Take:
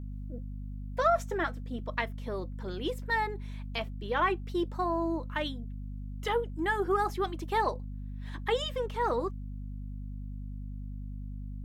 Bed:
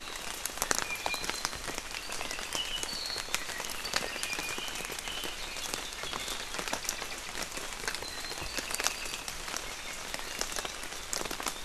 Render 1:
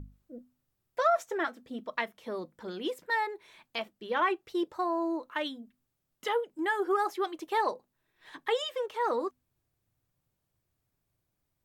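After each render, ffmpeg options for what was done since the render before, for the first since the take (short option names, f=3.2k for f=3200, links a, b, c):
-af "bandreject=f=50:t=h:w=6,bandreject=f=100:t=h:w=6,bandreject=f=150:t=h:w=6,bandreject=f=200:t=h:w=6,bandreject=f=250:t=h:w=6"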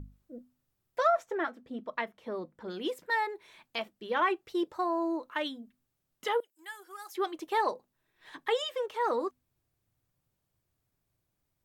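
-filter_complex "[0:a]asettb=1/sr,asplit=3[a][b][c];[a]atrim=end=1.114[d];[b]atrim=start=1.11:end=2.7,asetpts=PTS-STARTPTS,afade=t=in:d=0.004:c=qsin,afade=t=out:st=1.586:d=0.004:c=qsin,highshelf=f=3.5k:g=-11[e];[c]atrim=start=2.696[f];[d][e]acrossfade=d=0.004:c1=hsin:c2=qsin[g];[g][f]acrossfade=d=0.004:c1=qsin:c2=hsin,asettb=1/sr,asplit=3[h][i][j];[h]atrim=end=6.404[k];[i]atrim=start=6.4:end=7.15,asetpts=PTS-STARTPTS,afade=t=in:d=0.004:c=qsin,afade=t=out:st=0.746:d=0.004:c=qsin,aderivative[l];[j]atrim=start=7.146[m];[k][l]acrossfade=d=0.004:c1=hsin:c2=qsin[n];[n][m]acrossfade=d=0.004:c1=qsin:c2=hsin"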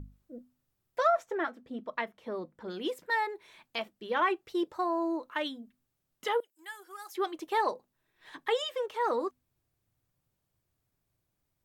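-af anull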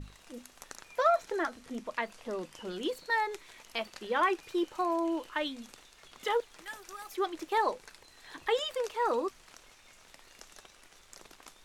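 -filter_complex "[1:a]volume=-18dB[a];[0:a][a]amix=inputs=2:normalize=0"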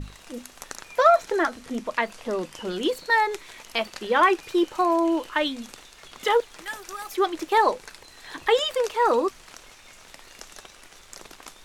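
-af "volume=9dB"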